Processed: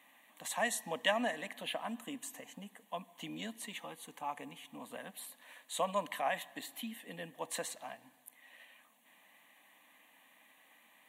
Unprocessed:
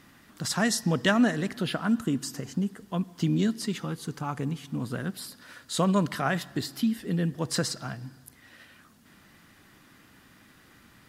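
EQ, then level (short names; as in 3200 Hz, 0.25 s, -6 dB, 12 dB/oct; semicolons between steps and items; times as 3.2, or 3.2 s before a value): HPF 310 Hz 24 dB/oct; fixed phaser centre 1400 Hz, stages 6; -2.5 dB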